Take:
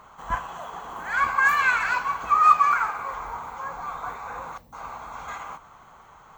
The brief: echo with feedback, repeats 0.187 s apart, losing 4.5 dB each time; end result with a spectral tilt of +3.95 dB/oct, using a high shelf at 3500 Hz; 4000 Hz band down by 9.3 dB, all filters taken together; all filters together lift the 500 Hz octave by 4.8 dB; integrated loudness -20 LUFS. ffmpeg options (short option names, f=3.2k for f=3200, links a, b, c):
-af "equalizer=f=500:t=o:g=6.5,highshelf=f=3.5k:g=-7.5,equalizer=f=4k:t=o:g=-8,aecho=1:1:187|374|561|748|935|1122|1309|1496|1683:0.596|0.357|0.214|0.129|0.0772|0.0463|0.0278|0.0167|0.01,volume=2.5dB"